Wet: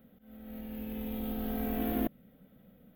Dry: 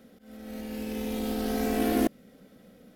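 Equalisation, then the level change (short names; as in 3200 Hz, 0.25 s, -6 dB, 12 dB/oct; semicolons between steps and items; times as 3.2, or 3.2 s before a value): EQ curve 150 Hz 0 dB, 380 Hz -11 dB, 610 Hz -7 dB, 2300 Hz -10 dB, 3400 Hz -9 dB, 5100 Hz -26 dB, 9500 Hz -20 dB, 15000 Hz +6 dB; 0.0 dB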